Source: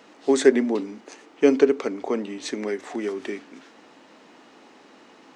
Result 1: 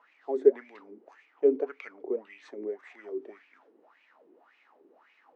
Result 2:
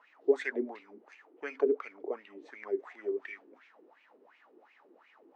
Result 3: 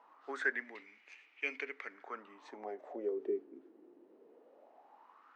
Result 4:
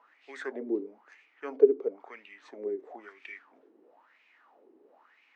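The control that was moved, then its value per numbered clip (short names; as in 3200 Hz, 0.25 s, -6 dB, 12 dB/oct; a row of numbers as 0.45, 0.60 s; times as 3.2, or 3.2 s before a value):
wah, rate: 1.8, 2.8, 0.2, 1 Hz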